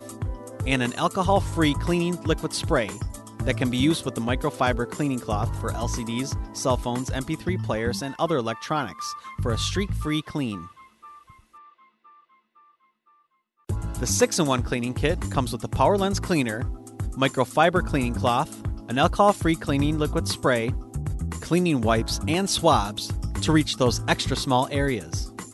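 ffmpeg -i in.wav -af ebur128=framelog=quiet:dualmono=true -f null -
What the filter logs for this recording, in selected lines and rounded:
Integrated loudness:
  I:         -21.7 LUFS
  Threshold: -32.3 LUFS
Loudness range:
  LRA:         7.4 LU
  Threshold: -42.3 LUFS
  LRA low:   -27.3 LUFS
  LRA high:  -20.0 LUFS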